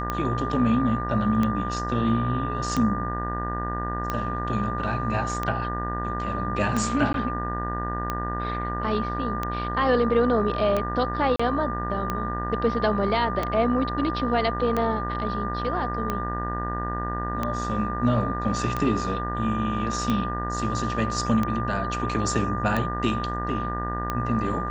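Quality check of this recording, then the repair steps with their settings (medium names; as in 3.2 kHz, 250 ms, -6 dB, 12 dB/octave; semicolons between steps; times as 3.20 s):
buzz 60 Hz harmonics 32 -31 dBFS
tick 45 rpm -13 dBFS
whine 1.2 kHz -30 dBFS
7.13–7.14 s: dropout 12 ms
11.36–11.39 s: dropout 35 ms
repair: de-click; de-hum 60 Hz, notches 32; band-stop 1.2 kHz, Q 30; interpolate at 7.13 s, 12 ms; interpolate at 11.36 s, 35 ms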